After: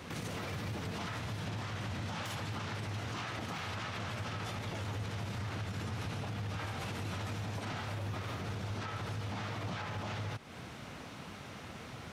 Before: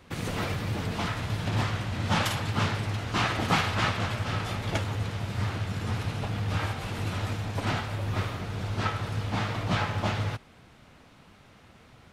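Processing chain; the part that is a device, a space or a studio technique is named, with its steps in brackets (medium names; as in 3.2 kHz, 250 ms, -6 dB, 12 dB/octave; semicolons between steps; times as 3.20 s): broadcast voice chain (high-pass 76 Hz; de-esser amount 70%; compression 4:1, threshold -41 dBFS, peak gain reduction 17.5 dB; peaking EQ 5.9 kHz +3 dB 0.31 oct; peak limiter -39 dBFS, peak gain reduction 11 dB); trim +8 dB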